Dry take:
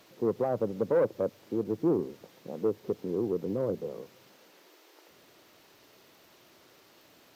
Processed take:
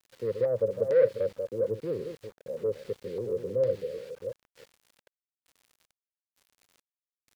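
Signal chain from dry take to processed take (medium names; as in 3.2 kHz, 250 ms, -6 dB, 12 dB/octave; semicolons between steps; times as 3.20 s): chunks repeated in reverse 332 ms, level -8 dB; FFT filter 120 Hz 0 dB, 170 Hz -8 dB, 320 Hz -15 dB, 540 Hz +6 dB, 760 Hz -25 dB, 1.8 kHz +5 dB, 4.6 kHz -1 dB, 6.8 kHz -24 dB, 9.9 kHz -10 dB; LFO low-pass square 1.1 Hz 880–5500 Hz; small samples zeroed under -49.5 dBFS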